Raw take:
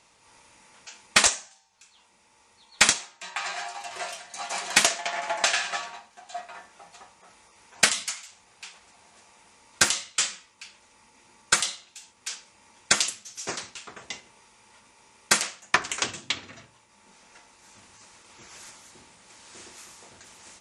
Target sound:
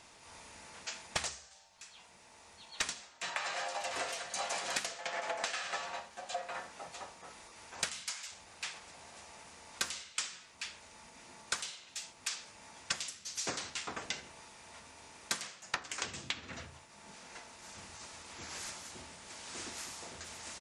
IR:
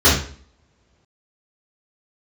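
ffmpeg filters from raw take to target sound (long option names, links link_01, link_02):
-filter_complex "[0:a]asplit=2[link_01][link_02];[link_02]asetrate=33038,aresample=44100,atempo=1.33484,volume=-5dB[link_03];[link_01][link_03]amix=inputs=2:normalize=0,acompressor=threshold=-35dB:ratio=16,asplit=2[link_04][link_05];[1:a]atrim=start_sample=2205[link_06];[link_05][link_06]afir=irnorm=-1:irlink=0,volume=-40.5dB[link_07];[link_04][link_07]amix=inputs=2:normalize=0,volume=1.5dB"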